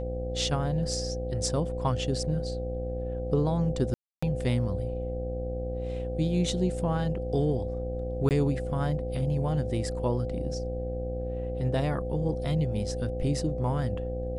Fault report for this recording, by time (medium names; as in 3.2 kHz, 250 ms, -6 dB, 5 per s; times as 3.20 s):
buzz 60 Hz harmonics 13 -34 dBFS
whine 510 Hz -34 dBFS
3.94–4.22 s: dropout 285 ms
8.29–8.31 s: dropout 18 ms